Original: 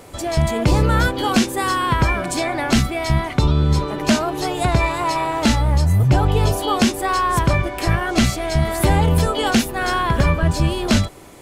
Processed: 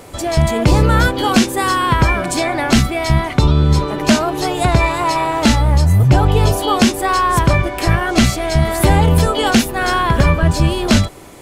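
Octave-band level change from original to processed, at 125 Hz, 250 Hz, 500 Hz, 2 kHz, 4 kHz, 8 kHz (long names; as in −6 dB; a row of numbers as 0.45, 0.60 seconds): +4.0, +4.0, +4.0, +4.0, +4.0, +4.0 decibels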